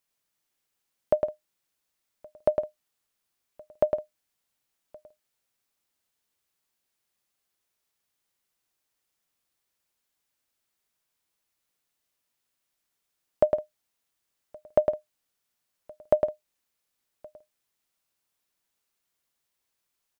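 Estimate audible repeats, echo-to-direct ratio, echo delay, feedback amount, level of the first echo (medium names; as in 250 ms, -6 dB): 2, -4.5 dB, 106 ms, no regular repeats, -4.5 dB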